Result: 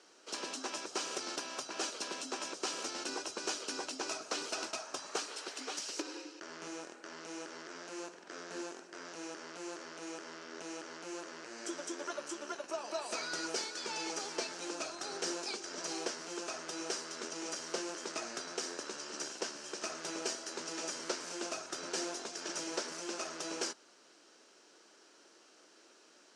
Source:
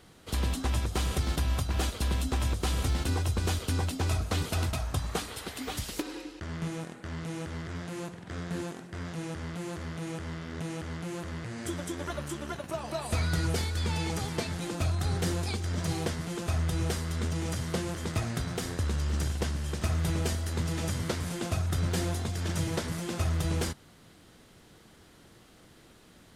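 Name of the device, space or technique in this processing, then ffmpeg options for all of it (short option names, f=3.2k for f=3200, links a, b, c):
phone speaker on a table: -af "highpass=f=370:w=0.5412,highpass=f=370:w=1.3066,equalizer=f=480:t=q:w=4:g=-5,equalizer=f=750:t=q:w=4:g=-6,equalizer=f=1.1k:t=q:w=4:g=-4,equalizer=f=2k:t=q:w=4:g=-8,equalizer=f=3.5k:t=q:w=4:g=-8,equalizer=f=5.7k:t=q:w=4:g=6,lowpass=f=7.6k:w=0.5412,lowpass=f=7.6k:w=1.3066"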